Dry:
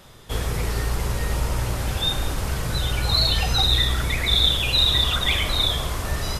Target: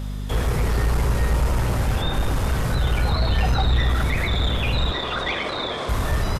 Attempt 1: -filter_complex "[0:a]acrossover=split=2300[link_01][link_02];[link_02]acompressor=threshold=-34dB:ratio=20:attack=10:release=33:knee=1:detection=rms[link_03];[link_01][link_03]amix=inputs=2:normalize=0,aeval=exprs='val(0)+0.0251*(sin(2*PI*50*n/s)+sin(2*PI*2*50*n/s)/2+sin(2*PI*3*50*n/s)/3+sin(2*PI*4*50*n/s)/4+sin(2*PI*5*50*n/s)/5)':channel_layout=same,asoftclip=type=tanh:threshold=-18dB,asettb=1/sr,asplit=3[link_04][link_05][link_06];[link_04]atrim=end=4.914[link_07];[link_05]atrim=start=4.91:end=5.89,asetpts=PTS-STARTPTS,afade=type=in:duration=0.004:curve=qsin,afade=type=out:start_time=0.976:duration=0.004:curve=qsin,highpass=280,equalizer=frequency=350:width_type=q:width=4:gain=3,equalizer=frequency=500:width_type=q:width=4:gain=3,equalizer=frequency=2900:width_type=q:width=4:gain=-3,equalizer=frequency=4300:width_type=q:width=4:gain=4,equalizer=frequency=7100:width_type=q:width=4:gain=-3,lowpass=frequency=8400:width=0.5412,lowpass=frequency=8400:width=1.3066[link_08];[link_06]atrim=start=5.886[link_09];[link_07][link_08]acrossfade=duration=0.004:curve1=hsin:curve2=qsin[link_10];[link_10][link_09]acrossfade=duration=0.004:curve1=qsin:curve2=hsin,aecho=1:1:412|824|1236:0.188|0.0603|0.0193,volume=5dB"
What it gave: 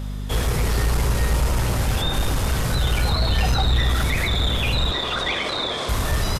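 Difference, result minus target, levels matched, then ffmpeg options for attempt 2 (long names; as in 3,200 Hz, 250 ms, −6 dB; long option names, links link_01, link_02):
downward compressor: peak gain reduction −8 dB
-filter_complex "[0:a]acrossover=split=2300[link_01][link_02];[link_02]acompressor=threshold=-42.5dB:ratio=20:attack=10:release=33:knee=1:detection=rms[link_03];[link_01][link_03]amix=inputs=2:normalize=0,aeval=exprs='val(0)+0.0251*(sin(2*PI*50*n/s)+sin(2*PI*2*50*n/s)/2+sin(2*PI*3*50*n/s)/3+sin(2*PI*4*50*n/s)/4+sin(2*PI*5*50*n/s)/5)':channel_layout=same,asoftclip=type=tanh:threshold=-18dB,asettb=1/sr,asplit=3[link_04][link_05][link_06];[link_04]atrim=end=4.914[link_07];[link_05]atrim=start=4.91:end=5.89,asetpts=PTS-STARTPTS,afade=type=in:duration=0.004:curve=qsin,afade=type=out:start_time=0.976:duration=0.004:curve=qsin,highpass=280,equalizer=frequency=350:width_type=q:width=4:gain=3,equalizer=frequency=500:width_type=q:width=4:gain=3,equalizer=frequency=2900:width_type=q:width=4:gain=-3,equalizer=frequency=4300:width_type=q:width=4:gain=4,equalizer=frequency=7100:width_type=q:width=4:gain=-3,lowpass=frequency=8400:width=0.5412,lowpass=frequency=8400:width=1.3066[link_08];[link_06]atrim=start=5.886[link_09];[link_07][link_08]acrossfade=duration=0.004:curve1=hsin:curve2=qsin[link_10];[link_10][link_09]acrossfade=duration=0.004:curve1=qsin:curve2=hsin,aecho=1:1:412|824|1236:0.188|0.0603|0.0193,volume=5dB"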